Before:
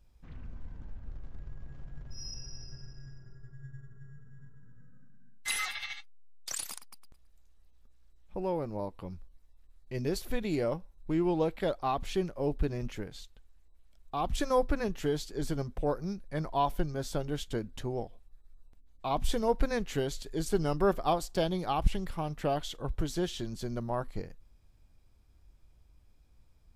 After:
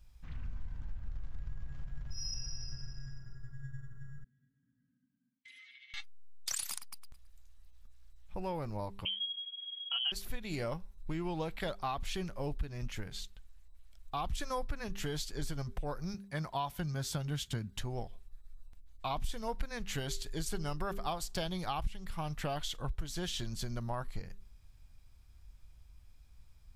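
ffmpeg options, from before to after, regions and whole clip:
ffmpeg -i in.wav -filter_complex "[0:a]asettb=1/sr,asplit=3[link_01][link_02][link_03];[link_01]atrim=end=4.244[link_04];[link_02]atrim=start=4.24:end=5.94,asetpts=PTS-STARTPTS,afade=type=in:duration=0.004:curve=qsin,afade=type=out:start_time=1.696:duration=0.004:curve=qsin,asplit=3[link_05][link_06][link_07];[link_05]bandpass=frequency=270:width_type=q:width=8,volume=0dB[link_08];[link_06]bandpass=frequency=2290:width_type=q:width=8,volume=-6dB[link_09];[link_07]bandpass=frequency=3010:width_type=q:width=8,volume=-9dB[link_10];[link_08][link_09][link_10]amix=inputs=3:normalize=0,acompressor=threshold=-57dB:ratio=8:attack=3.2:release=140:knee=1:detection=peak[link_11];[link_03]atrim=start=5.936[link_12];[link_04][link_11]acrossfade=duration=0.004:curve1=hsin:curve2=qsin[link_13];[link_13][link_12]acrossfade=duration=0.004:curve1=qsin:curve2=hsin,asettb=1/sr,asplit=3[link_14][link_15][link_16];[link_14]atrim=end=9.054[link_17];[link_15]atrim=start=9.05:end=10.12,asetpts=PTS-STARTPTS,afade=type=in:duration=0.004:curve=qsin,afade=type=out:start_time=1.066:duration=0.004:curve=qsin,aecho=1:1:4.7:0.9,atrim=end_sample=47187,lowpass=frequency=2800:width_type=q:width=0.5098,lowpass=frequency=2800:width_type=q:width=0.6013,lowpass=frequency=2800:width_type=q:width=0.9,lowpass=frequency=2800:width_type=q:width=2.563,afreqshift=-3300[link_18];[link_16]atrim=start=10.116[link_19];[link_17][link_18]acrossfade=duration=0.004:curve1=hsin:curve2=qsin[link_20];[link_20][link_19]acrossfade=duration=0.004:curve1=qsin:curve2=hsin,asettb=1/sr,asplit=3[link_21][link_22][link_23];[link_21]atrim=end=16.144[link_24];[link_22]atrim=start=16.14:end=17.77,asetpts=PTS-STARTPTS,afade=type=in:duration=0.004:curve=qsin,afade=type=out:start_time=1.626:duration=0.004:curve=qsin,asubboost=boost=8:cutoff=190,highpass=130[link_25];[link_23]atrim=start=17.766[link_26];[link_24][link_25]acrossfade=duration=0.004:curve1=hsin:curve2=qsin[link_27];[link_27][link_26]acrossfade=duration=0.004:curve1=qsin:curve2=hsin,equalizer=frequency=380:width=0.62:gain=-11.5,bandreject=frequency=198:width_type=h:width=4,bandreject=frequency=396:width_type=h:width=4,acompressor=threshold=-38dB:ratio=4,volume=5dB" out.wav

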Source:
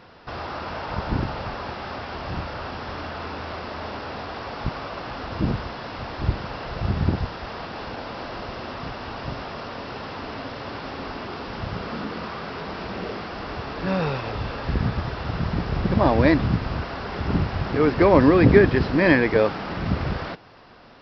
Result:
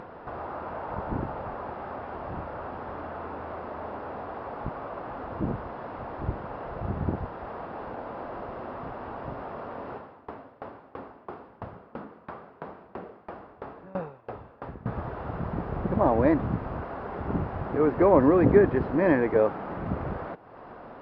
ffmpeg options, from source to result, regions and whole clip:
ffmpeg -i in.wav -filter_complex "[0:a]asettb=1/sr,asplit=3[link_01][link_02][link_03];[link_01]atrim=end=9.954[link_04];[link_02]atrim=start=9.95:end=14.86,asetpts=PTS-STARTPTS,afade=type=in:duration=0.004:curve=qsin,afade=type=out:start_time=4.906:duration=0.004:curve=qsin,highpass=53,aeval=exprs='val(0)*pow(10,-32*if(lt(mod(3*n/s,1),2*abs(3)/1000),1-mod(3*n/s,1)/(2*abs(3)/1000),(mod(3*n/s,1)-2*abs(3)/1000)/(1-2*abs(3)/1000))/20)':channel_layout=same[link_05];[link_03]atrim=start=14.856[link_06];[link_04][link_05]acrossfade=duration=0.004:curve1=hsin:curve2=qsin[link_07];[link_07][link_06]acrossfade=duration=0.004:curve1=qsin:curve2=hsin,lowpass=1000,lowshelf=frequency=270:gain=-9.5,acompressor=mode=upward:threshold=-34dB:ratio=2.5" out.wav

